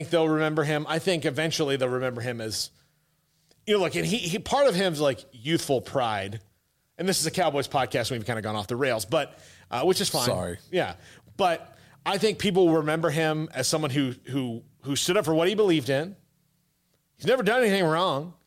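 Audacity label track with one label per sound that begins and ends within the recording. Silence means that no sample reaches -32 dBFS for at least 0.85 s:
3.680000	16.080000	sound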